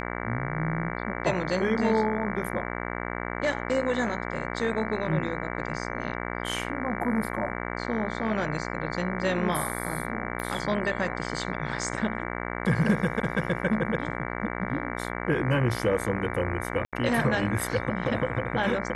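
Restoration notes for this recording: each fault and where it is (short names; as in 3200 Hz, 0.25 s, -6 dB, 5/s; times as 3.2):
buzz 60 Hz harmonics 38 -33 dBFS
10.4 pop -19 dBFS
16.85–16.93 gap 77 ms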